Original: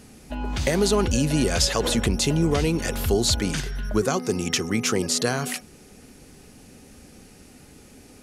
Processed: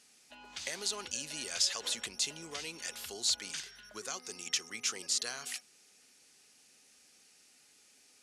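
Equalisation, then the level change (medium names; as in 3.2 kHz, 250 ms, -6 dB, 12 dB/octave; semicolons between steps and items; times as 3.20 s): distance through air 79 m; differentiator; 0.0 dB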